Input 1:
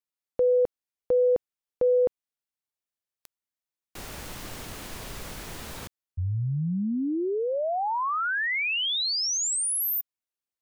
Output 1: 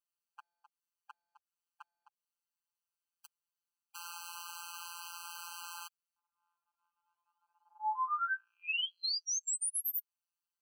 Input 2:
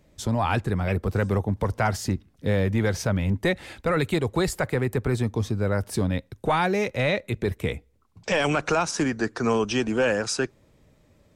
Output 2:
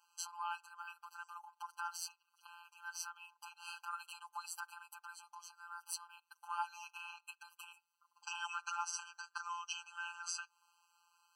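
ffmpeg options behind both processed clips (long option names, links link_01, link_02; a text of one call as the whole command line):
ffmpeg -i in.wav -af "acompressor=threshold=-32dB:ratio=6:attack=2.1:release=301:knee=6:detection=peak,afftfilt=real='hypot(re,im)*cos(PI*b)':imag='0':win_size=1024:overlap=0.75,afftfilt=real='re*eq(mod(floor(b*sr/1024/810),2),1)':imag='im*eq(mod(floor(b*sr/1024/810),2),1)':win_size=1024:overlap=0.75,volume=3.5dB" out.wav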